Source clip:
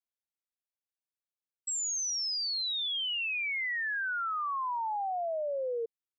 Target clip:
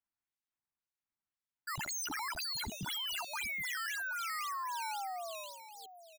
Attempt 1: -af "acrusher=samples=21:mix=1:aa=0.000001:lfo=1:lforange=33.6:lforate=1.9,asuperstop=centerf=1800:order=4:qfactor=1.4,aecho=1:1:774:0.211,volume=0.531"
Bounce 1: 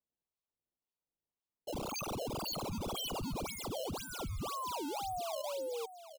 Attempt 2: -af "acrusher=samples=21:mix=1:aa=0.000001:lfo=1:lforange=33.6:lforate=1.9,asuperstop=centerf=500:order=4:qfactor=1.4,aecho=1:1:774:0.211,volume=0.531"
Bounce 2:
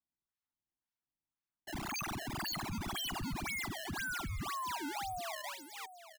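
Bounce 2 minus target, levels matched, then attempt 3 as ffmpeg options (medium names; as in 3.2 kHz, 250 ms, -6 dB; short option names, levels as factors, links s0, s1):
decimation with a swept rate: distortion +8 dB
-af "acrusher=samples=8:mix=1:aa=0.000001:lfo=1:lforange=12.8:lforate=1.9,asuperstop=centerf=500:order=4:qfactor=1.4,aecho=1:1:774:0.211,volume=0.531"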